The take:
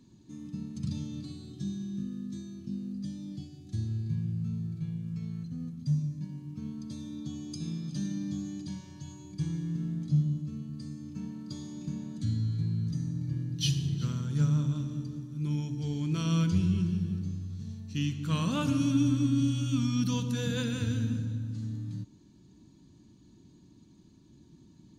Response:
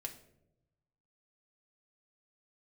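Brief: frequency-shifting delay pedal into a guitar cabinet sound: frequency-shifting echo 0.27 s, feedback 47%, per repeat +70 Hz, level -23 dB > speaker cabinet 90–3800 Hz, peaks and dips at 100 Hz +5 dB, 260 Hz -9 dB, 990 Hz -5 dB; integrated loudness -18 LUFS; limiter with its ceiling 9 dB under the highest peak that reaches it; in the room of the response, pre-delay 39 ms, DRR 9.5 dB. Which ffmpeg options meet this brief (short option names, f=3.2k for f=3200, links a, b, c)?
-filter_complex "[0:a]alimiter=level_in=1dB:limit=-24dB:level=0:latency=1,volume=-1dB,asplit=2[a][b];[1:a]atrim=start_sample=2205,adelay=39[c];[b][c]afir=irnorm=-1:irlink=0,volume=-7dB[d];[a][d]amix=inputs=2:normalize=0,asplit=4[e][f][g][h];[f]adelay=270,afreqshift=70,volume=-23dB[i];[g]adelay=540,afreqshift=140,volume=-29.6dB[j];[h]adelay=810,afreqshift=210,volume=-36.1dB[k];[e][i][j][k]amix=inputs=4:normalize=0,highpass=90,equalizer=f=100:t=q:w=4:g=5,equalizer=f=260:t=q:w=4:g=-9,equalizer=f=990:t=q:w=4:g=-5,lowpass=f=3.8k:w=0.5412,lowpass=f=3.8k:w=1.3066,volume=17.5dB"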